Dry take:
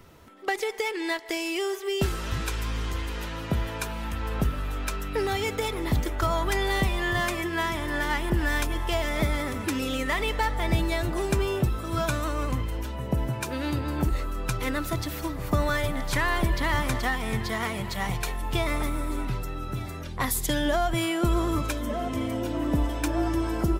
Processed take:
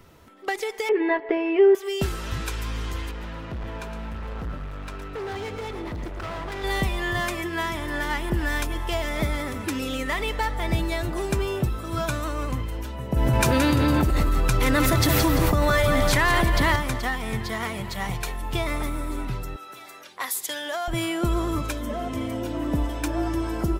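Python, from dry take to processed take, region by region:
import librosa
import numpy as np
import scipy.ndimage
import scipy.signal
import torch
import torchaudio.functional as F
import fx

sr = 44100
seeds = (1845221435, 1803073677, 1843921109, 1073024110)

y = fx.chain(x, sr, fx.lowpass(hz=2400.0, slope=24),
    fx.peak_eq(hz=410.0, db=11.5, octaves=1.7),
    fx.comb(ms=7.2, depth=0.67), at=(0.89, 1.75))
y = fx.chain(y, sr, fx.lowpass(hz=1800.0, slope=6),
    fx.clip_hard(threshold_db=-30.0),
    fx.echo_single(ms=114, db=-8.5), at=(3.11, 6.64))
y = fx.chain(y, sr, fx.echo_feedback(ms=172, feedback_pct=38, wet_db=-8.5),
    fx.env_flatten(amount_pct=100), at=(13.16, 16.76))
y = fx.chain(y, sr, fx.highpass(hz=360.0, slope=12),
    fx.low_shelf(hz=490.0, db=-12.0), at=(19.56, 20.88))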